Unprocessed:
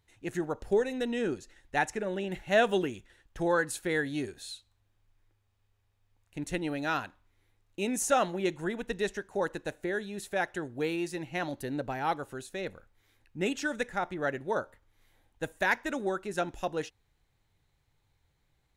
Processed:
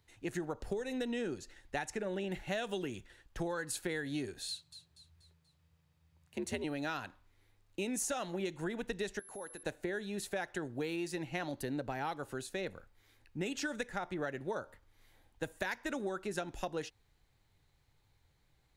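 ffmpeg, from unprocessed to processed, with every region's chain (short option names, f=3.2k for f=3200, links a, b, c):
-filter_complex "[0:a]asettb=1/sr,asplit=3[a][b][c];[a]atrim=end=4.484[d];[b]atrim=start=4.48:end=6.64,asetpts=PTS-STARTPTS,afade=t=in:d=0.004:c=qsin,afade=t=out:st=2.156:d=0.004:c=qsin,aecho=1:1:241|482|723|964:0.237|0.107|0.048|0.0216,atrim=end_sample=95256,afreqshift=62[e];[c]atrim=start=6.636[f];[d][e]acrossfade=d=0.004:c1=hsin:c2=qsin[g];[g][f]acrossfade=d=0.004:c1=qsin:c2=hsin,asettb=1/sr,asplit=3[h][i][j];[h]atrim=end=9.194[k];[i]atrim=start=9.19:end=9.63,asetpts=PTS-STARTPTS,afade=t=in:d=0.004:c=qsin,afade=t=out:st=0.436:d=0.004:c=qsin,lowshelf=f=190:g=-10.5,acompressor=threshold=-48dB:ratio=3:attack=3.2:release=140:knee=1:detection=peak,aeval=exprs='val(0)+0.00251*sin(2*PI*11000*n/s)':c=same[l];[j]atrim=start=9.626[m];[k][l]acrossfade=d=0.004:c1=hsin:c2=qsin[n];[n][m]acrossfade=d=0.004:c1=qsin:c2=hsin,acrossover=split=130|3000[o][p][q];[p]acompressor=threshold=-29dB:ratio=6[r];[o][r][q]amix=inputs=3:normalize=0,equalizer=f=4.6k:t=o:w=0.26:g=3.5,acompressor=threshold=-36dB:ratio=3,volume=1dB"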